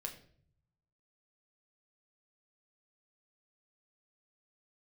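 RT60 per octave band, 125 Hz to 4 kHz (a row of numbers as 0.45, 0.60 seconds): 1.3, 0.90, 0.65, 0.45, 0.45, 0.45 seconds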